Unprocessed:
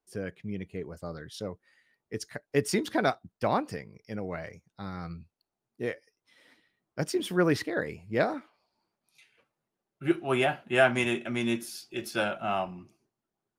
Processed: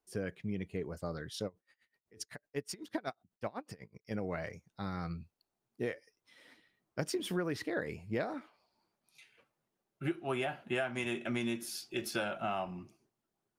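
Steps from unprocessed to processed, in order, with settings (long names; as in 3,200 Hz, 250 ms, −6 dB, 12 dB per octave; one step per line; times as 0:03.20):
downward compressor 12 to 1, threshold −31 dBFS, peak gain reduction 15.5 dB
0:01.46–0:04.11: tremolo with a sine in dB 8 Hz, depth 26 dB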